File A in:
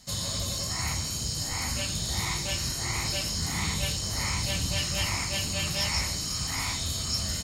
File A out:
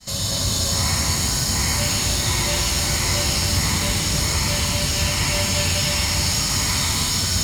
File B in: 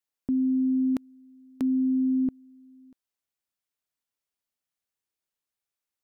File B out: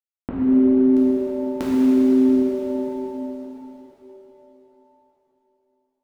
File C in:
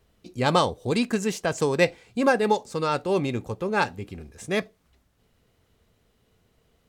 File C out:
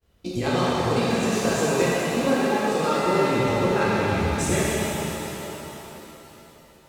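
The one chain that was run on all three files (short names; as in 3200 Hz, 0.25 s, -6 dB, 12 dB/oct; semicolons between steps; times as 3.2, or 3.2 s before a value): expander -54 dBFS; compressor 16:1, threshold -36 dBFS; shimmer reverb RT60 3.6 s, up +7 st, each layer -8 dB, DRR -9 dB; gain +9 dB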